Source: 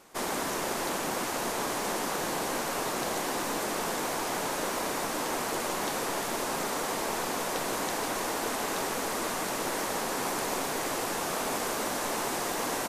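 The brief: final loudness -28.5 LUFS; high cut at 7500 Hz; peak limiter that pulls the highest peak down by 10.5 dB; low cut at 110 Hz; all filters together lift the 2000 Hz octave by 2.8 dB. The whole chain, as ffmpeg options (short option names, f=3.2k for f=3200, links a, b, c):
-af "highpass=110,lowpass=7.5k,equalizer=f=2k:t=o:g=3.5,volume=7dB,alimiter=limit=-20dB:level=0:latency=1"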